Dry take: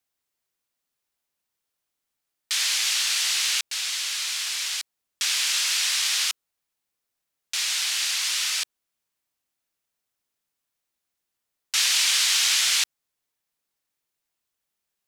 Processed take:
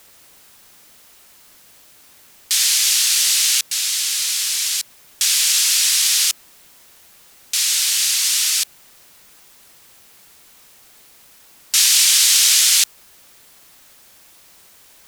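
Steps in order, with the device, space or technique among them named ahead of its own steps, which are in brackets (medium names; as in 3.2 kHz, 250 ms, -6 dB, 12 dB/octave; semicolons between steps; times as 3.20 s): turntable without a phono preamp (RIAA curve recording; white noise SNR 28 dB); trim -1 dB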